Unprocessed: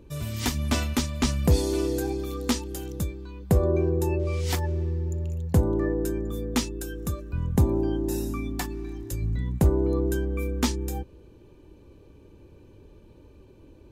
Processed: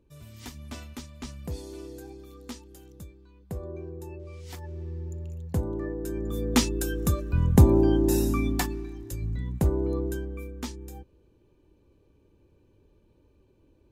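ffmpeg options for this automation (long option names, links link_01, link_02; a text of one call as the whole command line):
ffmpeg -i in.wav -af "volume=5dB,afade=type=in:start_time=4.52:duration=0.48:silence=0.398107,afade=type=in:start_time=6.02:duration=0.7:silence=0.251189,afade=type=out:start_time=8.49:duration=0.41:silence=0.375837,afade=type=out:start_time=9.93:duration=0.6:silence=0.421697" out.wav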